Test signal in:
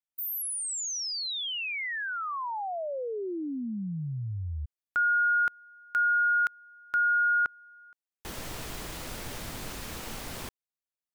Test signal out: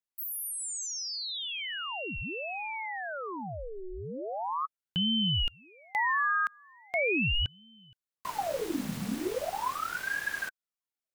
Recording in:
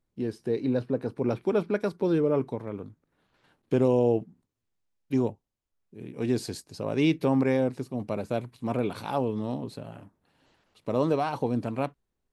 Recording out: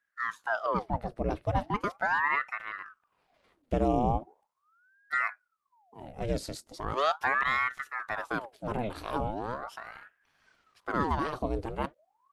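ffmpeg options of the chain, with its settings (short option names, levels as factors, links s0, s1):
-af "asubboost=boost=4.5:cutoff=69,aeval=exprs='val(0)*sin(2*PI*920*n/s+920*0.8/0.39*sin(2*PI*0.39*n/s))':c=same"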